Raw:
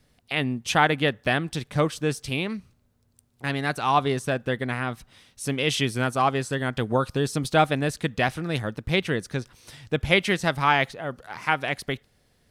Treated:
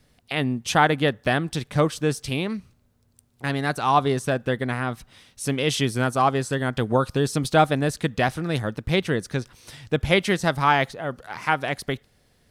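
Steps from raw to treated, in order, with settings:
dynamic equaliser 2,500 Hz, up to −5 dB, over −37 dBFS, Q 1.4
level +2.5 dB

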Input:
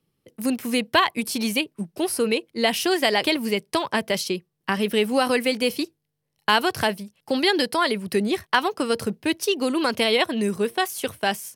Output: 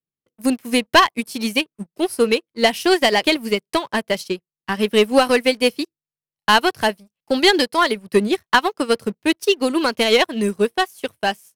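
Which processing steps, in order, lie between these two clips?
leveller curve on the samples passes 2
expander for the loud parts 2.5 to 1, over −25 dBFS
level +2.5 dB

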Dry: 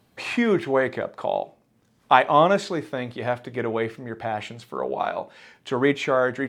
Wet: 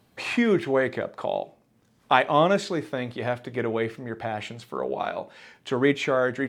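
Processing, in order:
dynamic equaliser 930 Hz, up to −5 dB, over −32 dBFS, Q 1.2

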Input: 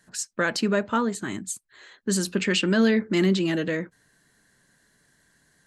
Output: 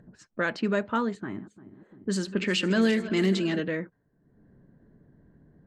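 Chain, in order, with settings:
0:01.18–0:03.60: feedback delay that plays each chunk backwards 174 ms, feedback 70%, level −13.5 dB
low-pass that shuts in the quiet parts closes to 380 Hz, open at −17 dBFS
upward compression, threshold −39 dBFS
level −3 dB

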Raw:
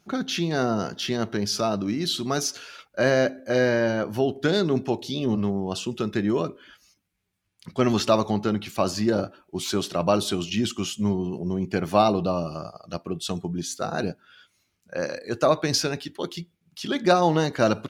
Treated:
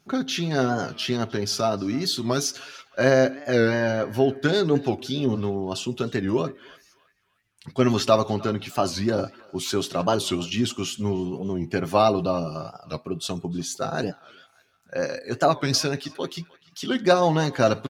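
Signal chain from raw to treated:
comb filter 7.5 ms, depth 45%
feedback echo with a band-pass in the loop 305 ms, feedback 48%, band-pass 2,000 Hz, level −19 dB
wow of a warped record 45 rpm, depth 160 cents

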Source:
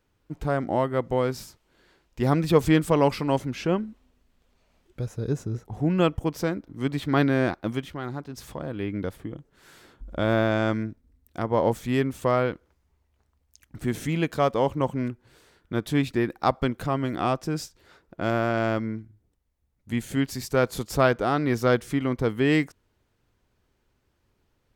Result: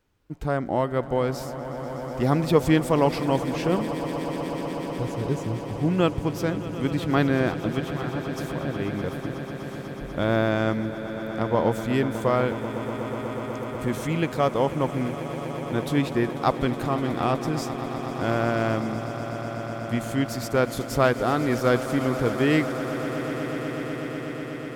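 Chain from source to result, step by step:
echo that builds up and dies away 123 ms, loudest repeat 8, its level −16 dB

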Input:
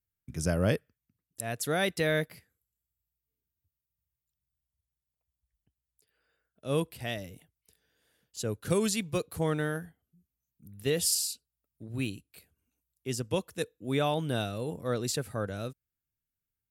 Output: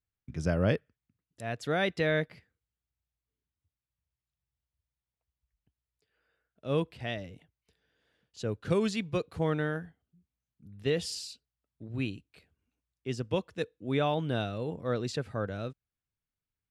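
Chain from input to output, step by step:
low-pass filter 3,800 Hz 12 dB per octave

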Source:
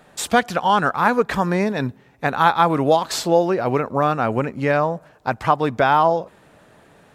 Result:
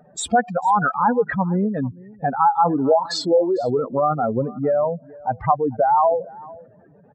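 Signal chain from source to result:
expanding power law on the bin magnitudes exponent 3.1
0:02.60–0:03.19: double-tracking delay 23 ms −12.5 dB
single-tap delay 450 ms −22 dB

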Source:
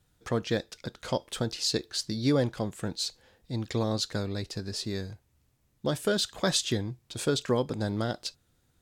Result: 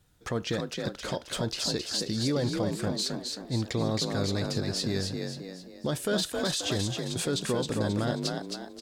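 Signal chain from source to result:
brickwall limiter −23.5 dBFS, peak gain reduction 11 dB
on a send: echo with shifted repeats 267 ms, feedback 44%, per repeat +42 Hz, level −4.5 dB
on the sum: level +3 dB

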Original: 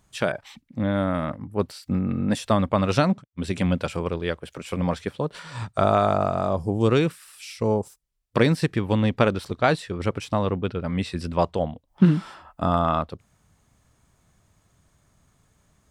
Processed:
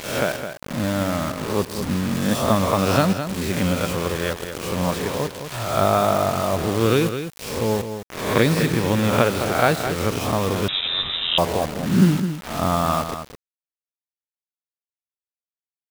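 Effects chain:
peak hold with a rise ahead of every peak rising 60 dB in 0.75 s
bit reduction 5 bits
on a send: single-tap delay 211 ms −9 dB
0:10.68–0:11.38: on the sum: voice inversion scrambler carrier 3,800 Hz

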